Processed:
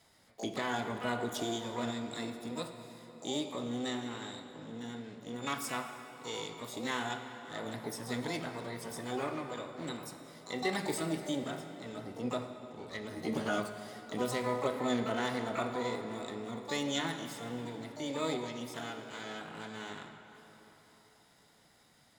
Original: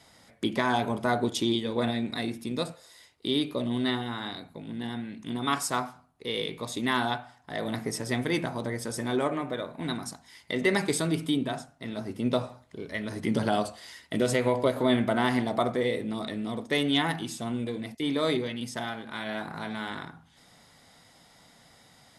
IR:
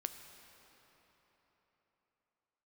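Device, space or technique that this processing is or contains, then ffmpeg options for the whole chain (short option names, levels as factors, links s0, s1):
shimmer-style reverb: -filter_complex "[0:a]asplit=2[s0][s1];[s1]asetrate=88200,aresample=44100,atempo=0.5,volume=0.501[s2];[s0][s2]amix=inputs=2:normalize=0[s3];[1:a]atrim=start_sample=2205[s4];[s3][s4]afir=irnorm=-1:irlink=0,asettb=1/sr,asplit=3[s5][s6][s7];[s5]atrim=end=13.154[s8];[s6]atrim=start=13.15:end=13.6,asetpts=PTS-STARTPTS,afade=t=in:d=0.004:c=qsin,afade=t=out:st=0.446:d=0.004:c=qsin,asplit=2[s9][s10];[s10]adelay=13,volume=0.631[s11];[s9][s11]amix=inputs=2:normalize=0,atrim=end_sample=19845[s12];[s7]atrim=start=13.596[s13];[s8][s12]acrossfade=d=0.004:c1=hsin:c2=qsin[s14];[s14][s13]acrossfade=d=0.004:c1=qsin:c2=hsin,volume=0.422"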